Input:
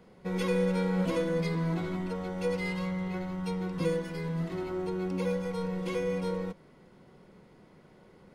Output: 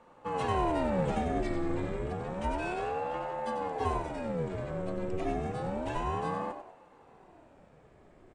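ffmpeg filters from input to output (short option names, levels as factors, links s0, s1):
-filter_complex "[0:a]lowpass=f=7900:t=q:w=9.6,bass=f=250:g=2,treble=f=4000:g=-12,bandreject=f=4500:w=12,asplit=2[s0][s1];[s1]asplit=4[s2][s3][s4][s5];[s2]adelay=94,afreqshift=-76,volume=0.398[s6];[s3]adelay=188,afreqshift=-152,volume=0.151[s7];[s4]adelay=282,afreqshift=-228,volume=0.0575[s8];[s5]adelay=376,afreqshift=-304,volume=0.0219[s9];[s6][s7][s8][s9]amix=inputs=4:normalize=0[s10];[s0][s10]amix=inputs=2:normalize=0,aeval=exprs='val(0)*sin(2*PI*440*n/s+440*0.6/0.3*sin(2*PI*0.3*n/s))':c=same"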